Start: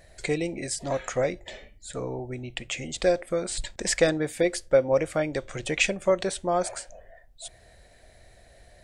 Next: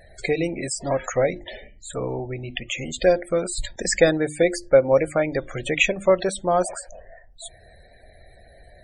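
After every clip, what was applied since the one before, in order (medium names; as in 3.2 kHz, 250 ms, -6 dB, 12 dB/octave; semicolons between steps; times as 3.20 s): hum notches 50/100/150/200/250/300/350 Hz; loudest bins only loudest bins 64; trim +5 dB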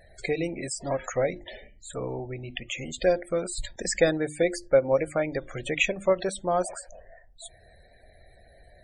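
endings held to a fixed fall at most 450 dB/s; trim -5 dB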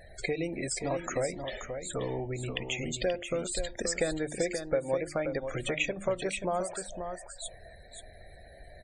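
compression 2.5:1, threshold -35 dBFS, peak gain reduction 13.5 dB; on a send: delay 530 ms -7.5 dB; on the sum: trim +3 dB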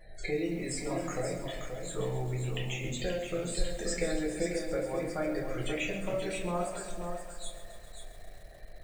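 simulated room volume 47 m³, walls mixed, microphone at 0.95 m; bit-crushed delay 134 ms, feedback 80%, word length 7-bit, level -12.5 dB; trim -8 dB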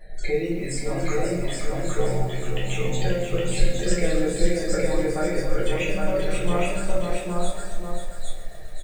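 delay 814 ms -3 dB; simulated room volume 30 m³, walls mixed, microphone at 0.43 m; trim +3.5 dB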